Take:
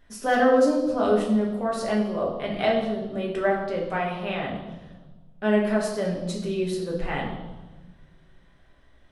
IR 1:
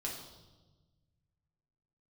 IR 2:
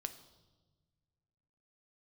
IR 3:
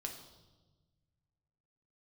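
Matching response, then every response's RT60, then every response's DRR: 1; 1.2 s, 1.3 s, 1.2 s; -3.0 dB, 8.5 dB, 2.0 dB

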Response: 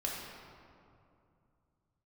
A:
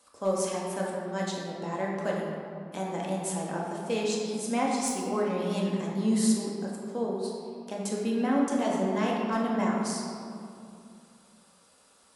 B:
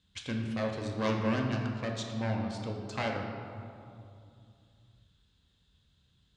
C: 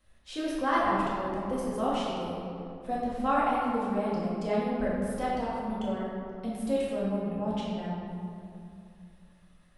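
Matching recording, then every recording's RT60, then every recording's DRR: A; 2.5 s, 2.5 s, 2.5 s; -3.5 dB, 1.0 dB, -7.5 dB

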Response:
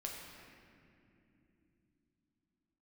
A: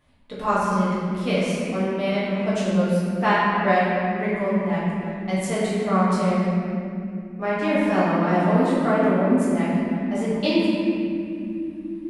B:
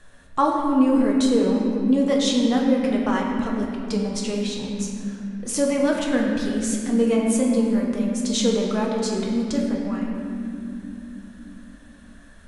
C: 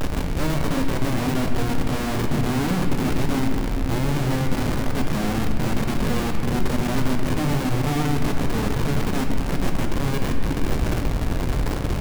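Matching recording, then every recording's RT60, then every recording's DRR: B; no single decay rate, 2.8 s, 2.7 s; -10.0 dB, -1.5 dB, 2.5 dB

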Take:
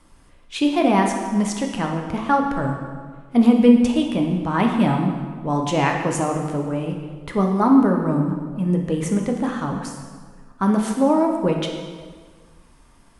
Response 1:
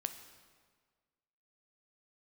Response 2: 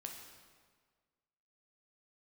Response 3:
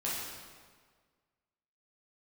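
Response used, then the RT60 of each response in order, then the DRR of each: 2; 1.7 s, 1.7 s, 1.7 s; 8.0 dB, 1.5 dB, -7.5 dB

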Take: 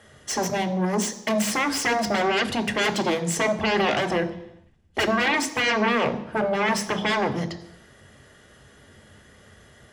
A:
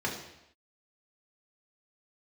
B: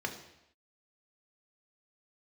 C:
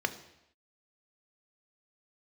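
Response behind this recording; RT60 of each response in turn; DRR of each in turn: C; no single decay rate, no single decay rate, no single decay rate; -3.0 dB, 2.5 dB, 8.5 dB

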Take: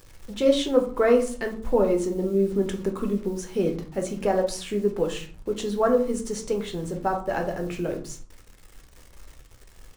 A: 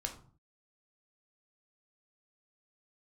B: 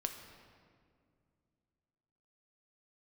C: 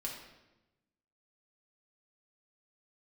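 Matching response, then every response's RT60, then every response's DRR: A; 0.45 s, 2.2 s, 1.0 s; 3.0 dB, 4.5 dB, -2.5 dB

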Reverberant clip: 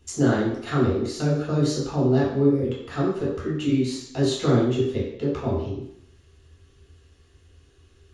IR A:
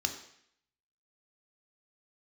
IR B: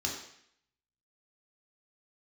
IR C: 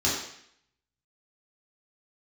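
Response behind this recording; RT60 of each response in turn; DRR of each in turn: C; 0.65 s, 0.65 s, 0.65 s; 5.0 dB, -2.0 dB, -7.0 dB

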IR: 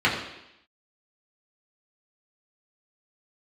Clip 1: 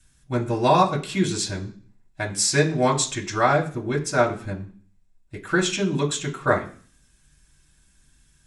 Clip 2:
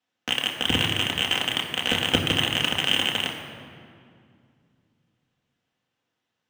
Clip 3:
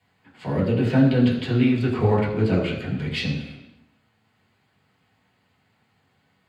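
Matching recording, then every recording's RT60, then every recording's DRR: 3; 0.45 s, 2.3 s, 0.85 s; -4.0 dB, -1.5 dB, -6.0 dB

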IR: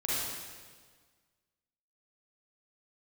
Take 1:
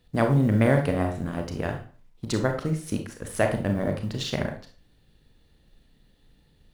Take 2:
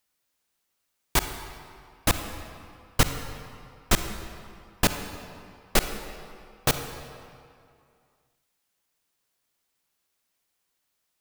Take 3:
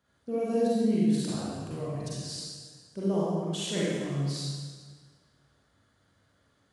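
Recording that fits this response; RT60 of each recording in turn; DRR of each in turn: 3; 0.40 s, 2.4 s, 1.6 s; 4.0 dB, 7.5 dB, -8.0 dB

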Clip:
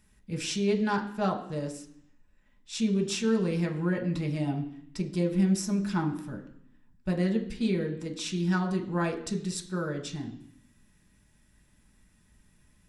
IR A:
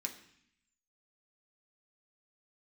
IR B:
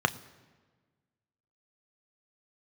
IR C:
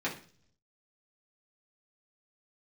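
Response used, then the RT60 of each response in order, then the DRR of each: A; 0.65 s, no single decay rate, 0.45 s; 2.0 dB, 10.0 dB, -6.5 dB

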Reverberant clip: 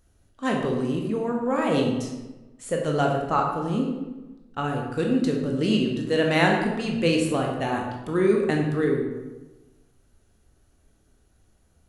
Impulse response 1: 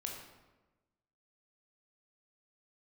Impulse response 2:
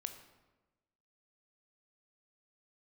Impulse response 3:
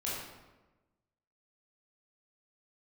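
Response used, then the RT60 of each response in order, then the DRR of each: 1; 1.1 s, 1.2 s, 1.1 s; 0.0 dB, 7.5 dB, -7.5 dB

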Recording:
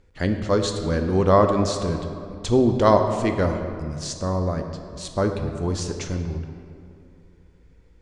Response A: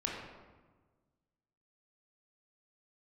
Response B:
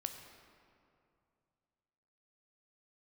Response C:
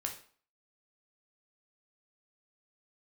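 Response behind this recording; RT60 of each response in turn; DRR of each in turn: B; 1.4 s, 2.5 s, 0.45 s; -3.0 dB, 5.5 dB, 2.0 dB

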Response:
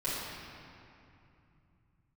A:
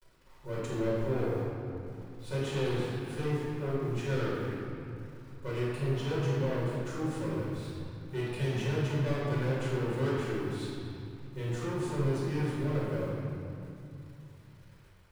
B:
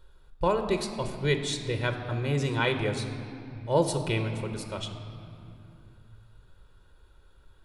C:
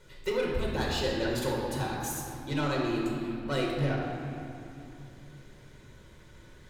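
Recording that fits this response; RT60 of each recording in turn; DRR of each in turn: A; 2.7 s, 2.8 s, 2.7 s; -10.0 dB, 6.5 dB, -3.0 dB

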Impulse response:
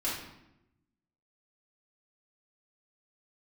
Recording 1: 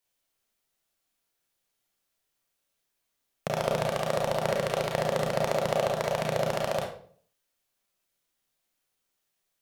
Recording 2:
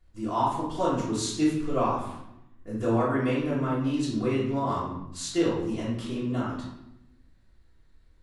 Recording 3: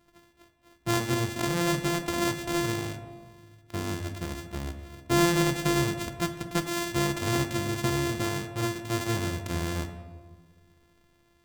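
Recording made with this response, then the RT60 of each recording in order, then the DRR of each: 2; 0.50 s, 0.90 s, 1.5 s; -1.0 dB, -9.0 dB, 6.5 dB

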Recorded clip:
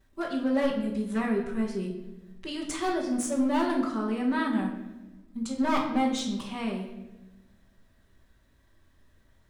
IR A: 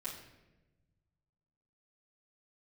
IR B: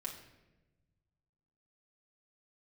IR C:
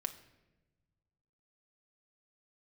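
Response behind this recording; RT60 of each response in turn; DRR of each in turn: A; 1.1 s, 1.1 s, 1.1 s; -9.5 dB, -2.0 dB, 6.5 dB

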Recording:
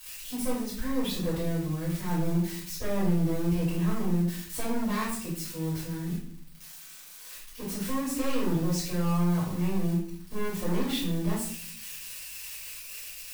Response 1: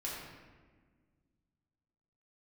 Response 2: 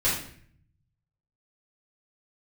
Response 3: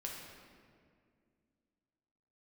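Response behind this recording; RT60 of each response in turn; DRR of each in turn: 2; 1.5 s, 0.55 s, 2.1 s; -6.0 dB, -9.0 dB, -2.0 dB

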